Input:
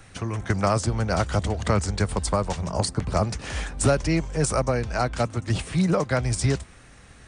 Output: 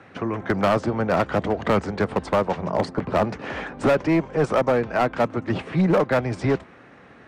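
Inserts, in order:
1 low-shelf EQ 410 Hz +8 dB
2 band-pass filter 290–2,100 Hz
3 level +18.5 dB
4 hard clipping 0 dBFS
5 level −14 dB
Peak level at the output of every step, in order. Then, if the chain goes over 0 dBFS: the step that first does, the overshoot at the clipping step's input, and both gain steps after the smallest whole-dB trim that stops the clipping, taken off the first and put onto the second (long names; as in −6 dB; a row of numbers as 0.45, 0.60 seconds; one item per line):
−2.0, −9.0, +9.5, 0.0, −14.0 dBFS
step 3, 9.5 dB
step 3 +8.5 dB, step 5 −4 dB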